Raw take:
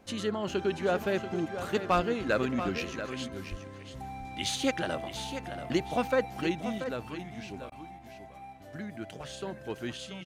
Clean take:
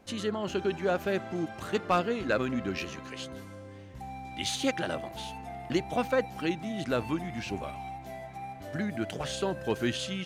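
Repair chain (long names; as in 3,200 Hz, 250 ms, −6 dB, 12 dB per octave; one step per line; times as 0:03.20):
0:01.95–0:02.07: high-pass filter 140 Hz 24 dB per octave
0:03.50–0:03.62: high-pass filter 140 Hz 24 dB per octave
repair the gap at 0:07.70, 17 ms
echo removal 684 ms −10 dB
level 0 dB, from 0:06.78 +7.5 dB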